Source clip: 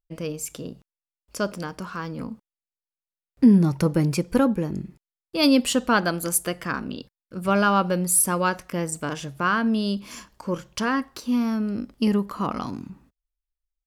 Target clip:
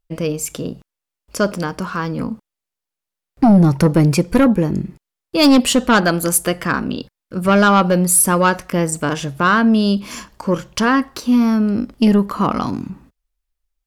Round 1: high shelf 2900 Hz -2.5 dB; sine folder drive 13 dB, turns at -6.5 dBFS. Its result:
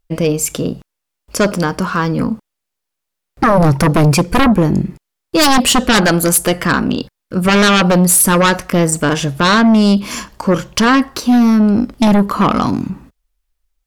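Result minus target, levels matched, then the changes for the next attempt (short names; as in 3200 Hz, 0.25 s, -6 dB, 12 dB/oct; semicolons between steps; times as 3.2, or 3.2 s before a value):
sine folder: distortion +12 dB
change: sine folder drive 6 dB, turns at -6.5 dBFS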